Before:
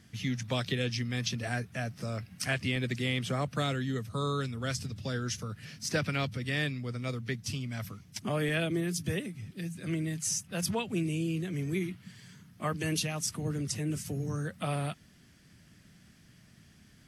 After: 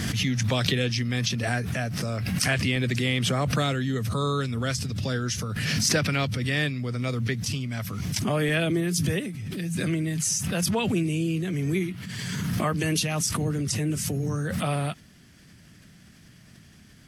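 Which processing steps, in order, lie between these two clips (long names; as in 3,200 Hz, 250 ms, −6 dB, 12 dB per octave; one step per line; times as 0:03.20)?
background raised ahead of every attack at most 21 dB per second
level +5.5 dB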